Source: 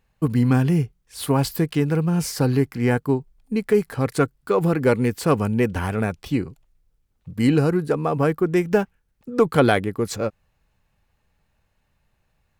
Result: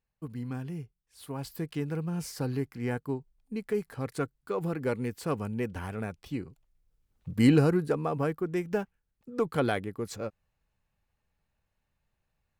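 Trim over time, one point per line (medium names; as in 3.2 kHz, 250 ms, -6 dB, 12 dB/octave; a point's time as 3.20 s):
1.30 s -18.5 dB
1.70 s -12 dB
6.44 s -12 dB
7.30 s -1 dB
8.42 s -11 dB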